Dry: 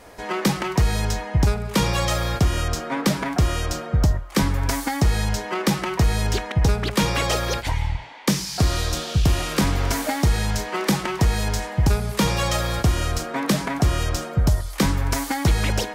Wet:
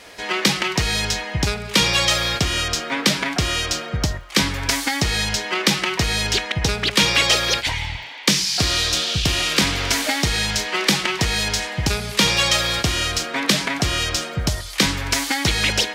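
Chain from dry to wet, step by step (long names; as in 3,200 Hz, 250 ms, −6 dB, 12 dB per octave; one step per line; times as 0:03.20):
meter weighting curve D
surface crackle 56 per second −40 dBFS
low-shelf EQ 64 Hz +9 dB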